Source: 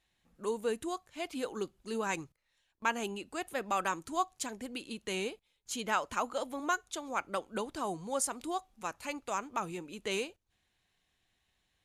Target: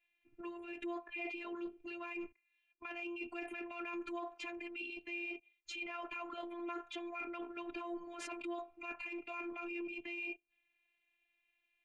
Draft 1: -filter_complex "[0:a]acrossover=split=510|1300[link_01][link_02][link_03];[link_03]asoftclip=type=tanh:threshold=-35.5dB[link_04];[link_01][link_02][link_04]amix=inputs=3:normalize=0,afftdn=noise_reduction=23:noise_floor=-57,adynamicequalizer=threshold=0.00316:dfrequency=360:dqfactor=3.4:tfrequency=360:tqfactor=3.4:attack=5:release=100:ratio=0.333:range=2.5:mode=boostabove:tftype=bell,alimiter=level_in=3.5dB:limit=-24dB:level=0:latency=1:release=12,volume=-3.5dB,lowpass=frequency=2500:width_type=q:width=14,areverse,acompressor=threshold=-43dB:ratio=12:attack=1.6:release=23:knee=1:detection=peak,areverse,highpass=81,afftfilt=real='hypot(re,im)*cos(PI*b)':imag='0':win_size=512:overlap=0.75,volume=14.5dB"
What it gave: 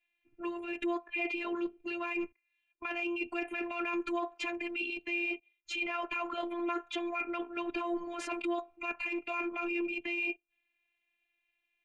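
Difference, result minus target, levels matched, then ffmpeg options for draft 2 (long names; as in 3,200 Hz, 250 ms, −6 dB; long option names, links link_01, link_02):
downward compressor: peak gain reduction −8.5 dB
-filter_complex "[0:a]acrossover=split=510|1300[link_01][link_02][link_03];[link_03]asoftclip=type=tanh:threshold=-35.5dB[link_04];[link_01][link_02][link_04]amix=inputs=3:normalize=0,afftdn=noise_reduction=23:noise_floor=-57,adynamicequalizer=threshold=0.00316:dfrequency=360:dqfactor=3.4:tfrequency=360:tqfactor=3.4:attack=5:release=100:ratio=0.333:range=2.5:mode=boostabove:tftype=bell,alimiter=level_in=3.5dB:limit=-24dB:level=0:latency=1:release=12,volume=-3.5dB,lowpass=frequency=2500:width_type=q:width=14,areverse,acompressor=threshold=-52.5dB:ratio=12:attack=1.6:release=23:knee=1:detection=peak,areverse,highpass=81,afftfilt=real='hypot(re,im)*cos(PI*b)':imag='0':win_size=512:overlap=0.75,volume=14.5dB"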